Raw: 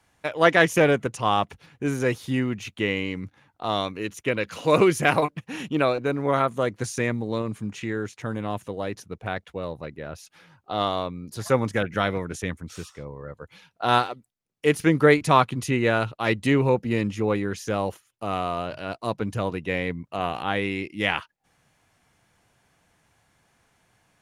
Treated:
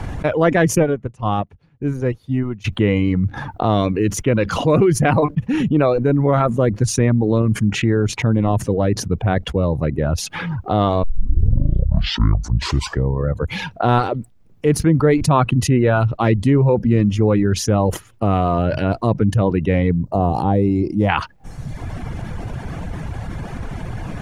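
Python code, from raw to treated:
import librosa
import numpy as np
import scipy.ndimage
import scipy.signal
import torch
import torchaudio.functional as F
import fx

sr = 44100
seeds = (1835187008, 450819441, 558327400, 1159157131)

y = fx.upward_expand(x, sr, threshold_db=-34.0, expansion=2.5, at=(0.82, 2.64), fade=0.02)
y = fx.band_shelf(y, sr, hz=2100.0, db=-15.0, octaves=1.7, at=(19.9, 21.08), fade=0.02)
y = fx.edit(y, sr, fx.tape_start(start_s=11.03, length_s=2.17), tone=tone)
y = fx.dereverb_blind(y, sr, rt60_s=0.81)
y = fx.tilt_eq(y, sr, slope=-4.0)
y = fx.env_flatten(y, sr, amount_pct=70)
y = F.gain(torch.from_numpy(y), -6.5).numpy()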